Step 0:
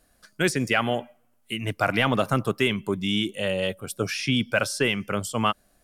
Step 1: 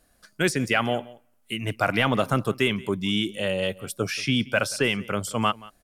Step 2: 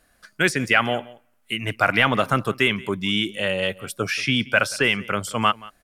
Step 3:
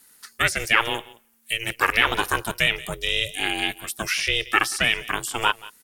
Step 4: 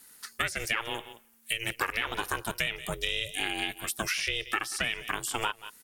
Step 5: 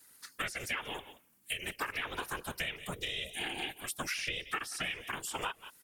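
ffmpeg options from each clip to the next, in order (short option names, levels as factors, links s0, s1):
-af "aecho=1:1:179:0.0841"
-af "equalizer=f=1800:w=0.74:g=7"
-filter_complex "[0:a]crystalizer=i=9:c=0,acrossover=split=2600[s0][s1];[s1]acompressor=threshold=0.112:ratio=4:attack=1:release=60[s2];[s0][s2]amix=inputs=2:normalize=0,aeval=exprs='val(0)*sin(2*PI*230*n/s)':c=same,volume=0.596"
-af "acompressor=threshold=0.0447:ratio=6"
-af "afftfilt=real='hypot(re,im)*cos(2*PI*random(0))':imag='hypot(re,im)*sin(2*PI*random(1))':win_size=512:overlap=0.75"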